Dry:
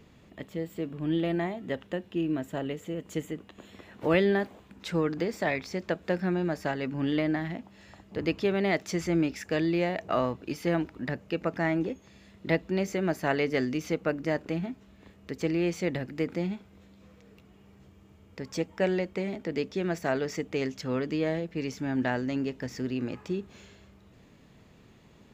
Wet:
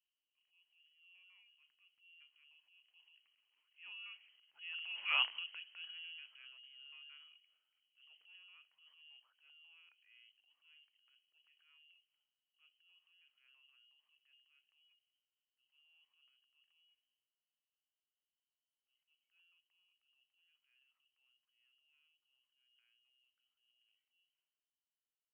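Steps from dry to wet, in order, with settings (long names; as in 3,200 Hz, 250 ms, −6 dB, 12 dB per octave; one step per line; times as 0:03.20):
source passing by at 0:05.15, 23 m/s, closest 1.3 metres
transient designer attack −8 dB, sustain +10 dB
voice inversion scrambler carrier 3,100 Hz
first difference
level +8 dB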